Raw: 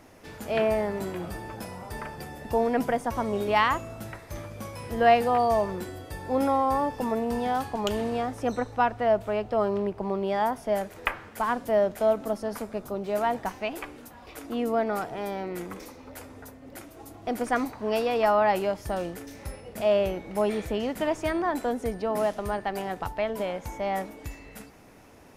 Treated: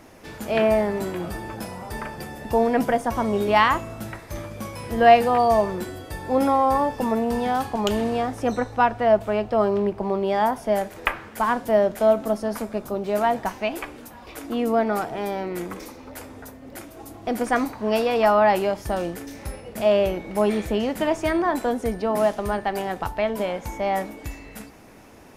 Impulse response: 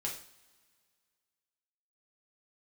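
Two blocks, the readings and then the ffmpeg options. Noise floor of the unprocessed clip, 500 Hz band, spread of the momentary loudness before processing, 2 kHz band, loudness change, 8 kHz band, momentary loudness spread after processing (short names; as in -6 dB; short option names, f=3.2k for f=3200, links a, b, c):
-49 dBFS, +4.5 dB, 17 LU, +4.5 dB, +5.0 dB, +4.5 dB, 17 LU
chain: -filter_complex "[0:a]asplit=2[a][b];[1:a]atrim=start_sample=2205,asetrate=74970,aresample=44100[c];[b][c]afir=irnorm=-1:irlink=0,volume=-7dB[d];[a][d]amix=inputs=2:normalize=0,volume=3dB"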